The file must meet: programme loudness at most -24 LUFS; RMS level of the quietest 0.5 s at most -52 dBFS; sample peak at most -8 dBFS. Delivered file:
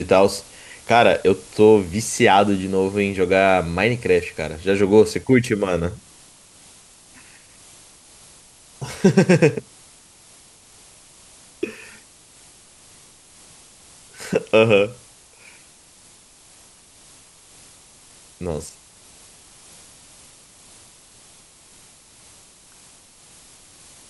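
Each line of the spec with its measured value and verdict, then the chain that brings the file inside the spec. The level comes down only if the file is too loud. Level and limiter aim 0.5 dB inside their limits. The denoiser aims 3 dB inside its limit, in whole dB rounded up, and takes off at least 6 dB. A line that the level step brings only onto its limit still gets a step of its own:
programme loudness -18.5 LUFS: fail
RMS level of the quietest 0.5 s -50 dBFS: fail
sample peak -2.0 dBFS: fail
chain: trim -6 dB; peak limiter -8.5 dBFS

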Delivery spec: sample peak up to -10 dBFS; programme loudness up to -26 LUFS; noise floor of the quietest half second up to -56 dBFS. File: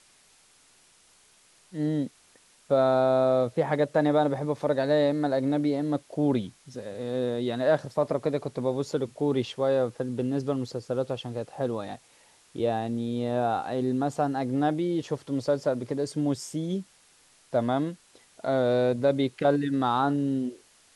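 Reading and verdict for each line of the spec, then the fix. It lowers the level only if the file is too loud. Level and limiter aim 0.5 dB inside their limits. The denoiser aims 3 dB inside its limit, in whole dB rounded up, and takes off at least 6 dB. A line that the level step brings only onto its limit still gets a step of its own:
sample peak -11.5 dBFS: pass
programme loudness -27.5 LUFS: pass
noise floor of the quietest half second -60 dBFS: pass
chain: none needed

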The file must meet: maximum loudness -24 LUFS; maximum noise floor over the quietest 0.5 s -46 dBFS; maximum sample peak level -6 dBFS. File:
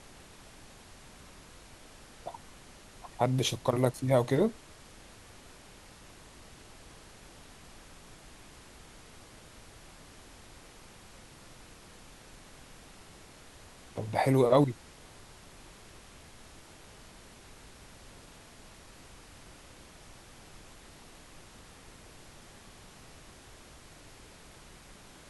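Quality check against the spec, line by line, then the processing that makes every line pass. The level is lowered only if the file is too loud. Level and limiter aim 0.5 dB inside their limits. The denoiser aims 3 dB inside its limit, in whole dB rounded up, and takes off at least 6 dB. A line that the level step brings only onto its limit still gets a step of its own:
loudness -29.0 LUFS: pass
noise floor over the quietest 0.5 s -53 dBFS: pass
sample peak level -10.0 dBFS: pass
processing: none needed

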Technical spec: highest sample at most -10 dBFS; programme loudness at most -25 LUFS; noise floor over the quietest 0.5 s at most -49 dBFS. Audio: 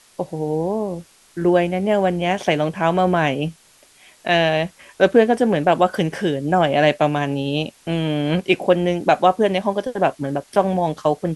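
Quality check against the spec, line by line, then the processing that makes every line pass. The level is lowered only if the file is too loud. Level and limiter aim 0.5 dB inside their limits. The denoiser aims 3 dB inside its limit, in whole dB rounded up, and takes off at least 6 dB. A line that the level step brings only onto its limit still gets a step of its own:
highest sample -2.0 dBFS: fail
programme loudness -19.5 LUFS: fail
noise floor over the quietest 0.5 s -52 dBFS: pass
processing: trim -6 dB; peak limiter -10.5 dBFS

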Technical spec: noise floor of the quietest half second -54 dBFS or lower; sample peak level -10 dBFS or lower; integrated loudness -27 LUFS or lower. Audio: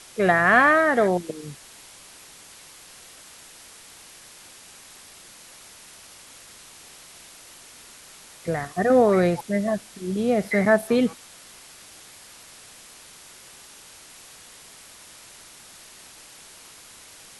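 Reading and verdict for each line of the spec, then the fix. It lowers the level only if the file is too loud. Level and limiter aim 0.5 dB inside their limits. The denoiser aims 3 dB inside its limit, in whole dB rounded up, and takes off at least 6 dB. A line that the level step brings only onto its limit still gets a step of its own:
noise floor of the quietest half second -47 dBFS: fail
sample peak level -5.0 dBFS: fail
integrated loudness -21.0 LUFS: fail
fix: noise reduction 6 dB, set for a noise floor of -47 dBFS; trim -6.5 dB

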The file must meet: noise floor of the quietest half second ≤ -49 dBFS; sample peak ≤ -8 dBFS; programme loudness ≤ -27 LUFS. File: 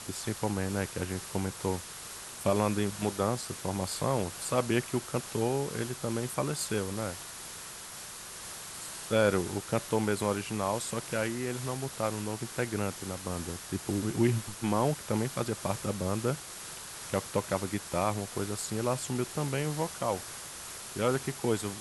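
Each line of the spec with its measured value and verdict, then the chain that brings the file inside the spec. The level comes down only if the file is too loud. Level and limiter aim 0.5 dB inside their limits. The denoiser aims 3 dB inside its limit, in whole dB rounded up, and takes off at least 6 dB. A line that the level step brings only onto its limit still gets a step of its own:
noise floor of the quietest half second -44 dBFS: fail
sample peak -12.0 dBFS: pass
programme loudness -32.5 LUFS: pass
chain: noise reduction 8 dB, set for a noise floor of -44 dBFS

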